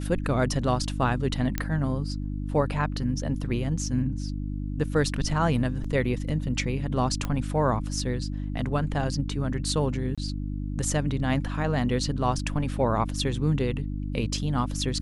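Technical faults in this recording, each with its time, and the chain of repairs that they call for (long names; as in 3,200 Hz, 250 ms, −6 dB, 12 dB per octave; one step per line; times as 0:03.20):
mains hum 50 Hz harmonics 6 −31 dBFS
0:01.58: click −12 dBFS
0:05.84: drop-out 4.6 ms
0:07.25: click −16 dBFS
0:10.15–0:10.18: drop-out 26 ms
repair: click removal
hum removal 50 Hz, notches 6
repair the gap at 0:05.84, 4.6 ms
repair the gap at 0:10.15, 26 ms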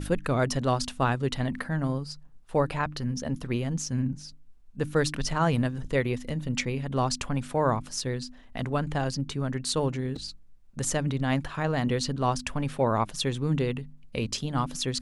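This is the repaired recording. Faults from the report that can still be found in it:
none of them is left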